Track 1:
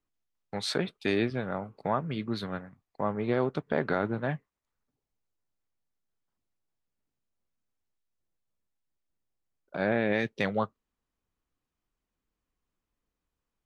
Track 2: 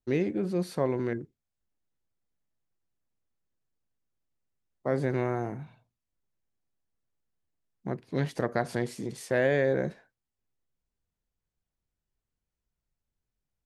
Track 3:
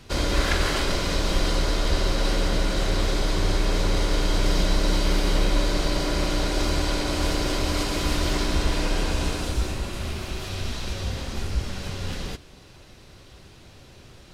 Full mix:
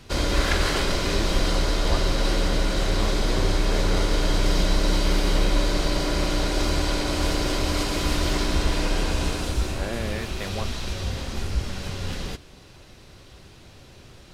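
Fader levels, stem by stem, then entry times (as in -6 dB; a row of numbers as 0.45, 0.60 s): -5.5 dB, off, +0.5 dB; 0.00 s, off, 0.00 s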